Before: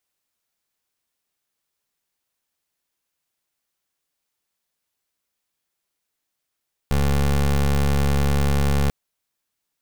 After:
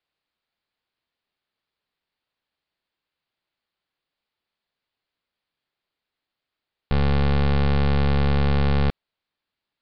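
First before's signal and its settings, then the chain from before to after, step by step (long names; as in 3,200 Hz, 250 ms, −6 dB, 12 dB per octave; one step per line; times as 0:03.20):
pulse wave 70.5 Hz, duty 22% −18.5 dBFS 1.99 s
Butterworth low-pass 4,700 Hz 72 dB per octave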